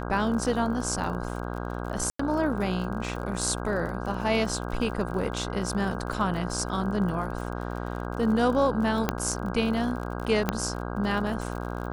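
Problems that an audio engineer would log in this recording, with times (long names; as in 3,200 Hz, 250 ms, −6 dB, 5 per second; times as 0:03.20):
mains buzz 60 Hz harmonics 27 −33 dBFS
surface crackle 50 per second −35 dBFS
0:02.10–0:02.19: drop-out 94 ms
0:09.09: click −9 dBFS
0:10.49: click −9 dBFS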